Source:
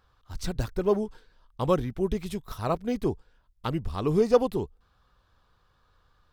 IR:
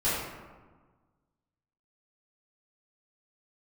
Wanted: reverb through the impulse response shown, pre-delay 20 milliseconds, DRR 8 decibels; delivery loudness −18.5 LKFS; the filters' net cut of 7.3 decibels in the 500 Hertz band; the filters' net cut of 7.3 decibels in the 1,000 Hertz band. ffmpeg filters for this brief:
-filter_complex "[0:a]equalizer=frequency=500:width_type=o:gain=-7.5,equalizer=frequency=1000:width_type=o:gain=-7,asplit=2[link_01][link_02];[1:a]atrim=start_sample=2205,adelay=20[link_03];[link_02][link_03]afir=irnorm=-1:irlink=0,volume=-19.5dB[link_04];[link_01][link_04]amix=inputs=2:normalize=0,volume=13.5dB"

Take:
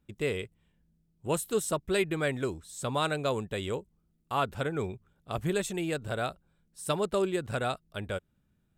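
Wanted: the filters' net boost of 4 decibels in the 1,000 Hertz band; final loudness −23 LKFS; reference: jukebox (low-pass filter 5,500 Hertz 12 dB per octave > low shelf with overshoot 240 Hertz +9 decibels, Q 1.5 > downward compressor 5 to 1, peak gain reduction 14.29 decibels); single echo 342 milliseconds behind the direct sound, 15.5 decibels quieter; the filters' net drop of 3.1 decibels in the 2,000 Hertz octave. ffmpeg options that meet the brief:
ffmpeg -i in.wav -af "lowpass=5500,lowshelf=frequency=240:width_type=q:width=1.5:gain=9,equalizer=frequency=1000:width_type=o:gain=8,equalizer=frequency=2000:width_type=o:gain=-8,aecho=1:1:342:0.168,acompressor=threshold=-33dB:ratio=5,volume=15dB" out.wav

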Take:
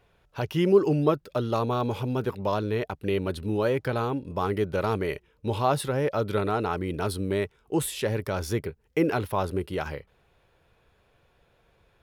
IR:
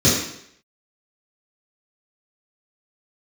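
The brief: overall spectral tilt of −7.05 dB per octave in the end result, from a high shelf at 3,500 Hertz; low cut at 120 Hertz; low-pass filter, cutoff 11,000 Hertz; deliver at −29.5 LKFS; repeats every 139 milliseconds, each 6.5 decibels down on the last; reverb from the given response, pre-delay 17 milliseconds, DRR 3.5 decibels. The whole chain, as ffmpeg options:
-filter_complex "[0:a]highpass=120,lowpass=11000,highshelf=frequency=3500:gain=-4.5,aecho=1:1:139|278|417|556|695|834:0.473|0.222|0.105|0.0491|0.0231|0.0109,asplit=2[link_01][link_02];[1:a]atrim=start_sample=2205,adelay=17[link_03];[link_02][link_03]afir=irnorm=-1:irlink=0,volume=-24dB[link_04];[link_01][link_04]amix=inputs=2:normalize=0,volume=-8dB"

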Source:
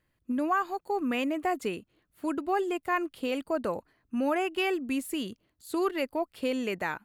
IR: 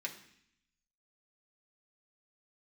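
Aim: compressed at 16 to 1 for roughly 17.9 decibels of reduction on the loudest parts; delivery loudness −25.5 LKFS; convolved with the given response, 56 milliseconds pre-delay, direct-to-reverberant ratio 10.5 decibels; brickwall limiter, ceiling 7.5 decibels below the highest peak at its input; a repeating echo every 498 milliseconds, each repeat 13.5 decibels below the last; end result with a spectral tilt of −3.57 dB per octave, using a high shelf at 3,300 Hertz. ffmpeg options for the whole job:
-filter_complex "[0:a]highshelf=frequency=3300:gain=3,acompressor=threshold=-40dB:ratio=16,alimiter=level_in=13dB:limit=-24dB:level=0:latency=1,volume=-13dB,aecho=1:1:498|996:0.211|0.0444,asplit=2[link_01][link_02];[1:a]atrim=start_sample=2205,adelay=56[link_03];[link_02][link_03]afir=irnorm=-1:irlink=0,volume=-11dB[link_04];[link_01][link_04]amix=inputs=2:normalize=0,volume=20.5dB"

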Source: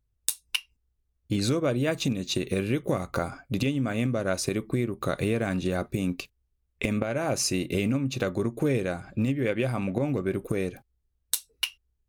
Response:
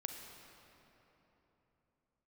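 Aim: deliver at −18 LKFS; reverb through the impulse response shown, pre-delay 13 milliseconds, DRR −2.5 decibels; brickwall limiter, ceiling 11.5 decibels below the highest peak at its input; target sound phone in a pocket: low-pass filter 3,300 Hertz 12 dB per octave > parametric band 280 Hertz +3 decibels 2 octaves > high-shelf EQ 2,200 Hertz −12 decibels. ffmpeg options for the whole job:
-filter_complex "[0:a]alimiter=limit=-20dB:level=0:latency=1,asplit=2[link_01][link_02];[1:a]atrim=start_sample=2205,adelay=13[link_03];[link_02][link_03]afir=irnorm=-1:irlink=0,volume=4dB[link_04];[link_01][link_04]amix=inputs=2:normalize=0,lowpass=3300,equalizer=frequency=280:width_type=o:width=2:gain=3,highshelf=frequency=2200:gain=-12,volume=7.5dB"

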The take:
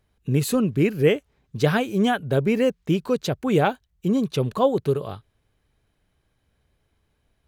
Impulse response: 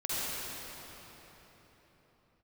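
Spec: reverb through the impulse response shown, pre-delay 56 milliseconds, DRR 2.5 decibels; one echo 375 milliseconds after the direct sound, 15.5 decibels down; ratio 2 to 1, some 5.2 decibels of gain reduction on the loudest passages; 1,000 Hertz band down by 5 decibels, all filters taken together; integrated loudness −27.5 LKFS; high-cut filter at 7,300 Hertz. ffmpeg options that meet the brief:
-filter_complex "[0:a]lowpass=7300,equalizer=frequency=1000:width_type=o:gain=-7.5,acompressor=threshold=-24dB:ratio=2,aecho=1:1:375:0.168,asplit=2[link_01][link_02];[1:a]atrim=start_sample=2205,adelay=56[link_03];[link_02][link_03]afir=irnorm=-1:irlink=0,volume=-10.5dB[link_04];[link_01][link_04]amix=inputs=2:normalize=0,volume=-2dB"

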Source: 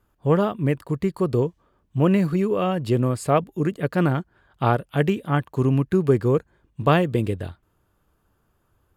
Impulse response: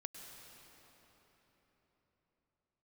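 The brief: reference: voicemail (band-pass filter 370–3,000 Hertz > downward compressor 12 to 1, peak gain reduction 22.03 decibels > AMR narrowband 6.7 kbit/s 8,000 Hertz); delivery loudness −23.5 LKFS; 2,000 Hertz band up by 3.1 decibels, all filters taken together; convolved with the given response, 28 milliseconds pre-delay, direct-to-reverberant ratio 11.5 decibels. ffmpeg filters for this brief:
-filter_complex "[0:a]equalizer=frequency=2000:width_type=o:gain=5,asplit=2[link_01][link_02];[1:a]atrim=start_sample=2205,adelay=28[link_03];[link_02][link_03]afir=irnorm=-1:irlink=0,volume=-8dB[link_04];[link_01][link_04]amix=inputs=2:normalize=0,highpass=370,lowpass=3000,acompressor=threshold=-34dB:ratio=12,volume=17.5dB" -ar 8000 -c:a libopencore_amrnb -b:a 6700

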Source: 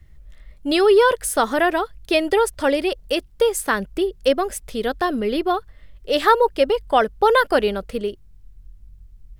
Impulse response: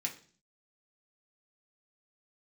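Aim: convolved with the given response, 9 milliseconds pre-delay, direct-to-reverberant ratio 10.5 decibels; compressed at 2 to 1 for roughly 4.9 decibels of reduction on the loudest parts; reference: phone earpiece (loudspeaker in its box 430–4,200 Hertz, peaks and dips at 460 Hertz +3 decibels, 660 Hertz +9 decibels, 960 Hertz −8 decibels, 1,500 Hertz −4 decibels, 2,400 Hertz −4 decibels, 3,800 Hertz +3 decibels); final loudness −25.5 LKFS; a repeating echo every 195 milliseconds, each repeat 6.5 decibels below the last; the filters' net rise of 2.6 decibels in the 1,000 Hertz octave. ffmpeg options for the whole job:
-filter_complex "[0:a]equalizer=frequency=1000:width_type=o:gain=5,acompressor=threshold=-17dB:ratio=2,aecho=1:1:195|390|585|780|975|1170:0.473|0.222|0.105|0.0491|0.0231|0.0109,asplit=2[link_01][link_02];[1:a]atrim=start_sample=2205,adelay=9[link_03];[link_02][link_03]afir=irnorm=-1:irlink=0,volume=-12dB[link_04];[link_01][link_04]amix=inputs=2:normalize=0,highpass=430,equalizer=frequency=460:width_type=q:width=4:gain=3,equalizer=frequency=660:width_type=q:width=4:gain=9,equalizer=frequency=960:width_type=q:width=4:gain=-8,equalizer=frequency=1500:width_type=q:width=4:gain=-4,equalizer=frequency=2400:width_type=q:width=4:gain=-4,equalizer=frequency=3800:width_type=q:width=4:gain=3,lowpass=frequency=4200:width=0.5412,lowpass=frequency=4200:width=1.3066,volume=-5.5dB"

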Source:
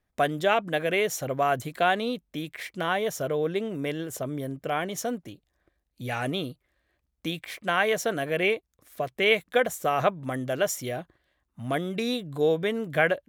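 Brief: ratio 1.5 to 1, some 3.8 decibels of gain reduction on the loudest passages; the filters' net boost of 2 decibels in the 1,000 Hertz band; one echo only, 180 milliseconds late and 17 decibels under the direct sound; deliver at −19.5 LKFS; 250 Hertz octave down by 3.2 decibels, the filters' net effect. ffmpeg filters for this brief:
ffmpeg -i in.wav -af "equalizer=frequency=250:width_type=o:gain=-4.5,equalizer=frequency=1000:width_type=o:gain=3.5,acompressor=threshold=-27dB:ratio=1.5,aecho=1:1:180:0.141,volume=10dB" out.wav

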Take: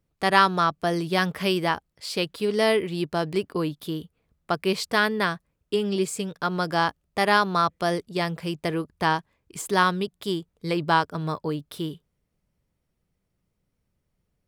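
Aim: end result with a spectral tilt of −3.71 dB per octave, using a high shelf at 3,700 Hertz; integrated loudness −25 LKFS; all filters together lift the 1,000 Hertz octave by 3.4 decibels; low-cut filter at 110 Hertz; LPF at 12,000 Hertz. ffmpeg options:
ffmpeg -i in.wav -af "highpass=110,lowpass=12000,equalizer=frequency=1000:width_type=o:gain=3.5,highshelf=frequency=3700:gain=7.5,volume=-2dB" out.wav

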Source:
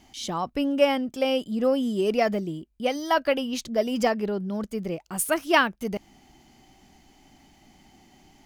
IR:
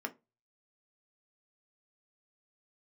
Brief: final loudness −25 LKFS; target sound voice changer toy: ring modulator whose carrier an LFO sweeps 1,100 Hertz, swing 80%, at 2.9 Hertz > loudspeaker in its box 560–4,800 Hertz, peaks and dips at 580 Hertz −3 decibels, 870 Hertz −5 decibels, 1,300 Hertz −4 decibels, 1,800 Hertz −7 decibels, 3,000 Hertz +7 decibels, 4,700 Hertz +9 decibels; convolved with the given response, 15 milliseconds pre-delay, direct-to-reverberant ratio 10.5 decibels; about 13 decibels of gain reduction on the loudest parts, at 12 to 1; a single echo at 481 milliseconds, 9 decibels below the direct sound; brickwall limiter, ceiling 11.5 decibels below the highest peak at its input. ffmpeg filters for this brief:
-filter_complex "[0:a]acompressor=threshold=-27dB:ratio=12,alimiter=level_in=3.5dB:limit=-24dB:level=0:latency=1,volume=-3.5dB,aecho=1:1:481:0.355,asplit=2[link_01][link_02];[1:a]atrim=start_sample=2205,adelay=15[link_03];[link_02][link_03]afir=irnorm=-1:irlink=0,volume=-12.5dB[link_04];[link_01][link_04]amix=inputs=2:normalize=0,aeval=exprs='val(0)*sin(2*PI*1100*n/s+1100*0.8/2.9*sin(2*PI*2.9*n/s))':channel_layout=same,highpass=560,equalizer=frequency=580:width_type=q:width=4:gain=-3,equalizer=frequency=870:width_type=q:width=4:gain=-5,equalizer=frequency=1300:width_type=q:width=4:gain=-4,equalizer=frequency=1800:width_type=q:width=4:gain=-7,equalizer=frequency=3000:width_type=q:width=4:gain=7,equalizer=frequency=4700:width_type=q:width=4:gain=9,lowpass=frequency=4800:width=0.5412,lowpass=frequency=4800:width=1.3066,volume=14dB"

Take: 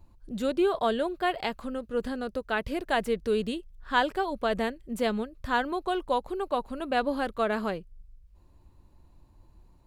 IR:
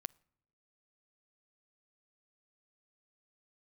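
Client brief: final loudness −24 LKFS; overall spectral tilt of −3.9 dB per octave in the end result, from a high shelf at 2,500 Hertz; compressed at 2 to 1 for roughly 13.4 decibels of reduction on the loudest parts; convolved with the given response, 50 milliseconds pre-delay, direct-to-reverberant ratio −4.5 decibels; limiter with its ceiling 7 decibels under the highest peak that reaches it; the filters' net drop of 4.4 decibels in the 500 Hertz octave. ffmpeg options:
-filter_complex "[0:a]equalizer=frequency=500:width_type=o:gain=-5.5,highshelf=frequency=2500:gain=-4.5,acompressor=threshold=-48dB:ratio=2,alimiter=level_in=10.5dB:limit=-24dB:level=0:latency=1,volume=-10.5dB,asplit=2[link_01][link_02];[1:a]atrim=start_sample=2205,adelay=50[link_03];[link_02][link_03]afir=irnorm=-1:irlink=0,volume=8dB[link_04];[link_01][link_04]amix=inputs=2:normalize=0,volume=15.5dB"

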